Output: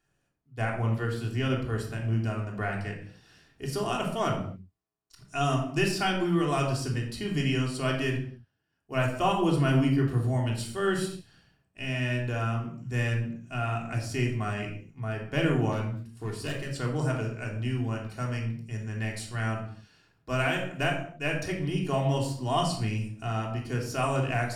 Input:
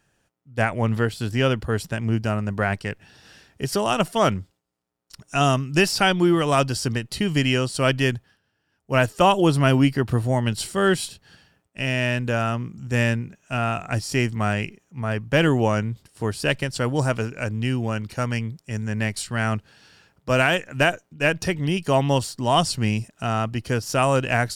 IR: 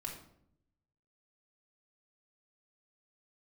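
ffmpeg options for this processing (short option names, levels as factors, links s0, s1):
-filter_complex "[0:a]asettb=1/sr,asplit=3[s0][s1][s2];[s0]atrim=end=15.724[s3];[s1]atrim=start=15.72:end=16.77,asetpts=PTS-STARTPTS,afade=t=in:d=0.004:c=qsin,afade=t=out:st=1.046:d=0.004:c=qsin,asoftclip=type=hard:threshold=0.1[s4];[s2]atrim=start=16.766[s5];[s3][s4]acrossfade=d=0.004:c1=hsin:c2=qsin[s6];[s6][s5]acrossfade=d=0.004:c1=qsin:c2=hsin[s7];[1:a]atrim=start_sample=2205,afade=t=out:st=0.33:d=0.01,atrim=end_sample=14994[s8];[s7][s8]afir=irnorm=-1:irlink=0,volume=0.447"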